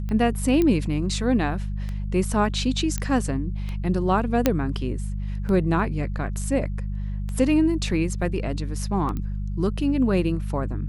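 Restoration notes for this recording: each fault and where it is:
mains hum 50 Hz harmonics 4 −28 dBFS
scratch tick 33 1/3 rpm −20 dBFS
0:00.62: click −11 dBFS
0:02.98: click −12 dBFS
0:04.46: click −4 dBFS
0:09.17: click −19 dBFS

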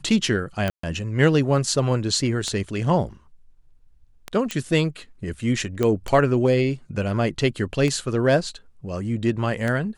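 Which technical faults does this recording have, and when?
scratch tick 33 1/3 rpm −12 dBFS
0:00.70–0:00.83: drop-out 134 ms
0:04.51: click −11 dBFS
0:05.83: click −10 dBFS

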